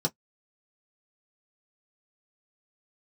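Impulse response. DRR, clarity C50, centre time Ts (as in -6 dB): -1.0 dB, 37.0 dB, 6 ms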